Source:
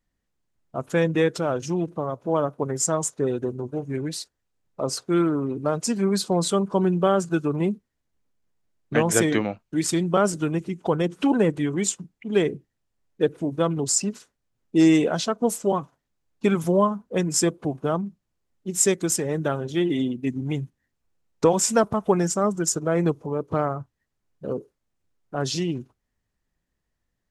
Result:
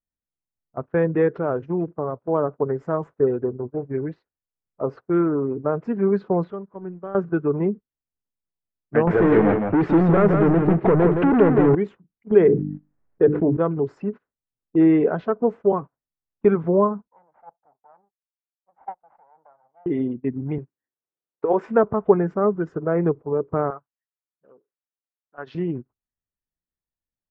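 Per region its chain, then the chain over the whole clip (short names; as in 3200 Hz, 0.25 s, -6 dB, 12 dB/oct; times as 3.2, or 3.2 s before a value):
6.44–7.15 G.711 law mismatch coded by A + LPF 4200 Hz + compressor 2.5:1, threshold -33 dBFS
9.07–11.75 compressor 4:1, threshold -24 dBFS + sample leveller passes 5 + echo 0.167 s -5 dB
12.31–13.57 gate -48 dBFS, range -19 dB + notches 50/100/150/200/250/300 Hz + fast leveller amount 70%
17.08–19.86 minimum comb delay 1.4 ms + band-pass 850 Hz, Q 3.9 + expander -50 dBFS
20.58–21.67 HPF 120 Hz + resonant low shelf 270 Hz -7 dB, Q 1.5 + negative-ratio compressor -18 dBFS, ratio -0.5
23.7–25.55 HPF 1100 Hz 6 dB/oct + bell 3800 Hz +6 dB 2.4 oct
whole clip: dynamic EQ 420 Hz, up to +8 dB, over -39 dBFS, Q 5.4; gate -30 dBFS, range -17 dB; LPF 1800 Hz 24 dB/oct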